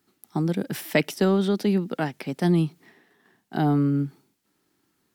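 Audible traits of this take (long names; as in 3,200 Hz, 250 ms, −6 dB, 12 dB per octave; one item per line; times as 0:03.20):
background noise floor −73 dBFS
spectral slope −6.0 dB per octave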